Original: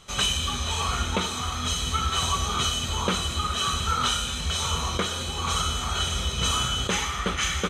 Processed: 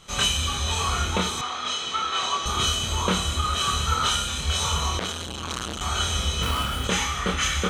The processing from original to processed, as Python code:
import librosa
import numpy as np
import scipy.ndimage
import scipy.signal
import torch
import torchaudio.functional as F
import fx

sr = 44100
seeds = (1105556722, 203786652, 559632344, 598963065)

y = fx.median_filter(x, sr, points=9, at=(6.42, 6.84))
y = fx.doubler(y, sr, ms=27.0, db=-2.5)
y = fx.bandpass_edges(y, sr, low_hz=350.0, high_hz=4800.0, at=(1.41, 2.46))
y = fx.transformer_sat(y, sr, knee_hz=1500.0, at=(4.99, 5.81))